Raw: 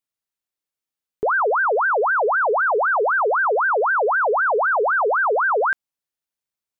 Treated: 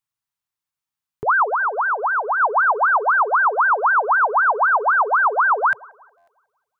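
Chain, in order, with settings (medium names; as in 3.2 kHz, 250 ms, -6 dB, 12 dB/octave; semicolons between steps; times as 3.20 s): ten-band graphic EQ 125 Hz +9 dB, 250 Hz -3 dB, 500 Hz -9 dB, 1 kHz +7 dB; 1.47–2.40 s: compression, threshold -18 dBFS, peak gain reduction 5 dB; feedback echo behind a band-pass 182 ms, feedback 41%, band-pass 610 Hz, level -23 dB; buffer glitch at 6.17 s, samples 512, times 8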